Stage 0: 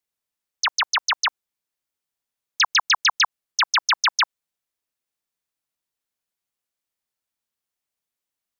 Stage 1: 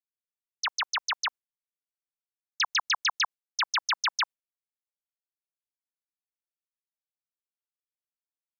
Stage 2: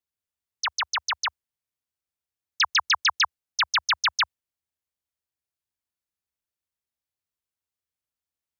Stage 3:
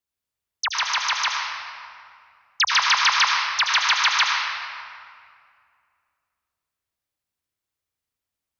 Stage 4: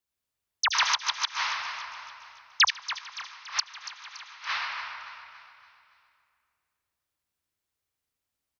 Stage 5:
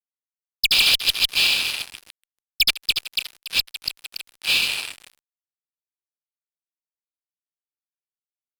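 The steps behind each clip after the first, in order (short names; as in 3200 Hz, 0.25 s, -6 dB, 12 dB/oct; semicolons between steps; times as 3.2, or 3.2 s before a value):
gate with hold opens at -22 dBFS; gain -8 dB
bell 76 Hz +13.5 dB 1.2 oct; in parallel at -3 dB: level quantiser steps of 13 dB; on the sum: gain +1 dB
reverb RT60 2.3 s, pre-delay 70 ms, DRR -1 dB; gain +2 dB
flipped gate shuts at -13 dBFS, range -26 dB; feedback echo 0.284 s, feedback 49%, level -13 dB
brick-wall FIR band-pass 2300–5200 Hz; fuzz box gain 34 dB, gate -43 dBFS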